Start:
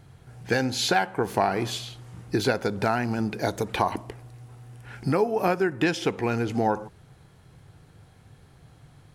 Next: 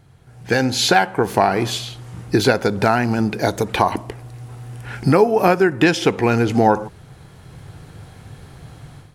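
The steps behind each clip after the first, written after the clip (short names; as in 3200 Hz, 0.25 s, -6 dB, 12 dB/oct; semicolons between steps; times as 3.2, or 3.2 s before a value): AGC gain up to 13 dB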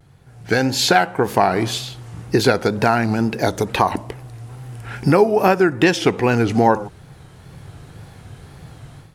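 wow and flutter 92 cents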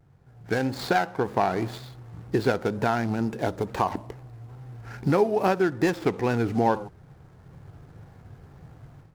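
median filter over 15 samples; gain -7.5 dB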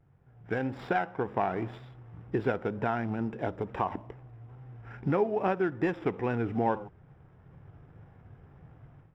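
polynomial smoothing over 25 samples; gain -5.5 dB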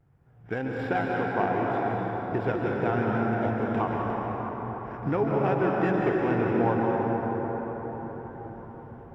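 reverb RT60 5.7 s, pre-delay 0.123 s, DRR -3 dB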